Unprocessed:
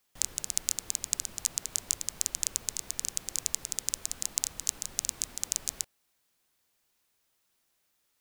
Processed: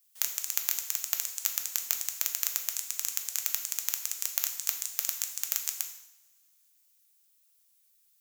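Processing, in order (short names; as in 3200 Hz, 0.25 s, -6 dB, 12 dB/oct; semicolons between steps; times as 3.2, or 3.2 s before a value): one-sided fold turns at -18.5 dBFS; differentiator; two-slope reverb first 0.74 s, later 3.1 s, from -27 dB, DRR 4 dB; gain +3.5 dB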